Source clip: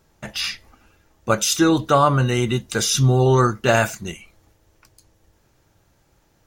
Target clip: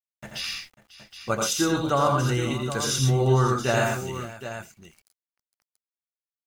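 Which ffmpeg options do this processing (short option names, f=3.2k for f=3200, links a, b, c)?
-af "aeval=exprs='val(0)*gte(abs(val(0)),0.00841)':c=same,aecho=1:1:84|116|129|544|769:0.596|0.473|0.299|0.141|0.282,volume=-7.5dB"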